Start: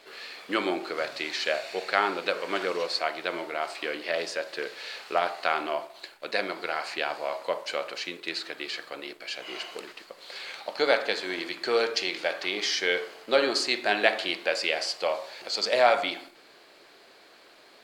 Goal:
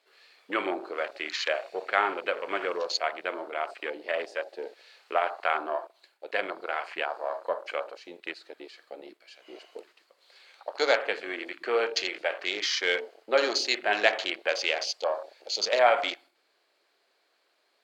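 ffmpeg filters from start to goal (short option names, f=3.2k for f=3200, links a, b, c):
-af "highpass=62,afwtdn=0.0224,bass=f=250:g=-14,treble=f=4k:g=1"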